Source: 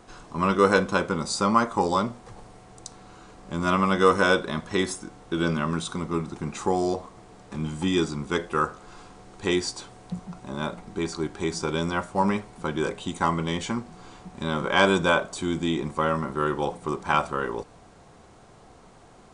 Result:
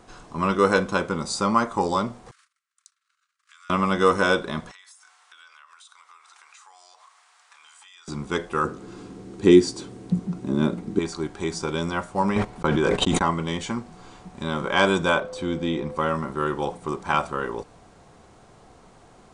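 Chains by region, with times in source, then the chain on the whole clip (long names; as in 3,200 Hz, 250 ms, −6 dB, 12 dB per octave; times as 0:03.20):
0:02.31–0:03.70: noise gate −45 dBFS, range −29 dB + Butterworth high-pass 1,200 Hz 72 dB per octave + downward compressor 5 to 1, threshold −49 dBFS
0:04.71–0:08.08: high-pass filter 1,100 Hz 24 dB per octave + downward compressor 8 to 1, threshold −47 dBFS
0:08.64–0:10.99: high-pass filter 190 Hz 6 dB per octave + low shelf with overshoot 480 Hz +12 dB, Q 1.5
0:12.36–0:13.31: noise gate −38 dBFS, range −35 dB + high-shelf EQ 6,500 Hz −11 dB + envelope flattener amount 100%
0:15.19–0:15.95: notch filter 7,100 Hz, Q 7.4 + steady tone 510 Hz −34 dBFS + high-frequency loss of the air 70 metres
whole clip: no processing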